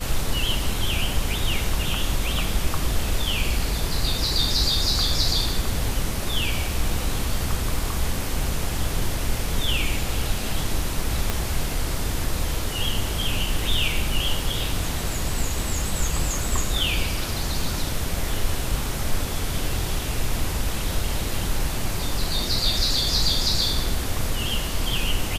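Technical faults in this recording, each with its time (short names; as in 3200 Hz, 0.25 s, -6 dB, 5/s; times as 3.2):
11.3 pop -8 dBFS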